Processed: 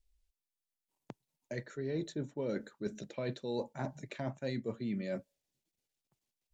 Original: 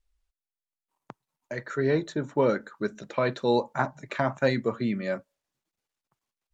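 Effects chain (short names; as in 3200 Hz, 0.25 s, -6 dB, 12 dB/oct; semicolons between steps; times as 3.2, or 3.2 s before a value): bell 1200 Hz -14 dB 1.2 oct; reverse; compressor 6:1, threshold -34 dBFS, peak gain reduction 12.5 dB; reverse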